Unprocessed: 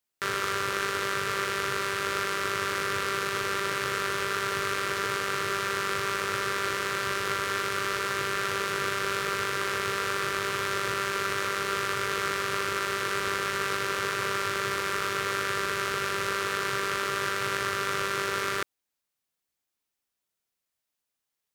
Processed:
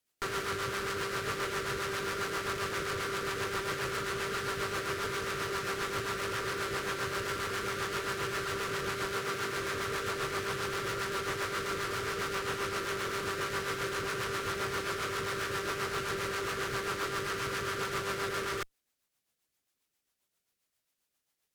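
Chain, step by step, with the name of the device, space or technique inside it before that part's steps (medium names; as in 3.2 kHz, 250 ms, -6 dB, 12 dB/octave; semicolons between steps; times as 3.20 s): overdriven rotary cabinet (valve stage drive 38 dB, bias 0.55; rotary cabinet horn 7.5 Hz); 9.13–9.57 s: high-pass 95 Hz; trim +8.5 dB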